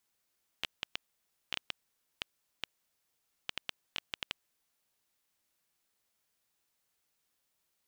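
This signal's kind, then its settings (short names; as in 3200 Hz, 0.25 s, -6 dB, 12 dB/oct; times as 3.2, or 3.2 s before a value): random clicks 4.7/s -16 dBFS 3.86 s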